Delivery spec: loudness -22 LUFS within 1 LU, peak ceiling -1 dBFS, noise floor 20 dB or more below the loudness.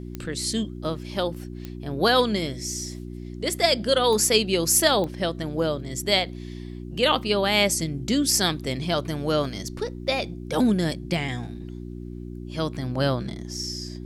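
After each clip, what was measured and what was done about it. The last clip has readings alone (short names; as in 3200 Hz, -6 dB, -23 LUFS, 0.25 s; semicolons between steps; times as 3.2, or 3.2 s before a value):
clicks 4; hum 60 Hz; harmonics up to 360 Hz; hum level -33 dBFS; loudness -24.0 LUFS; peak -5.0 dBFS; loudness target -22.0 LUFS
-> de-click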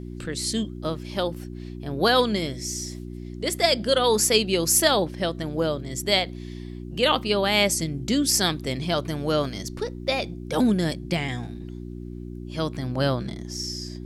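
clicks 0; hum 60 Hz; harmonics up to 360 Hz; hum level -33 dBFS
-> de-hum 60 Hz, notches 6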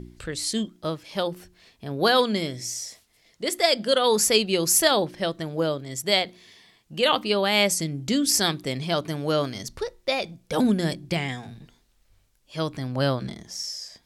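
hum none; loudness -24.0 LUFS; peak -5.5 dBFS; loudness target -22.0 LUFS
-> gain +2 dB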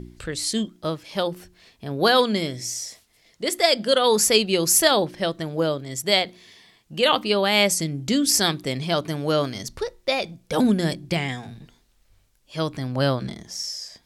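loudness -22.0 LUFS; peak -3.5 dBFS; noise floor -62 dBFS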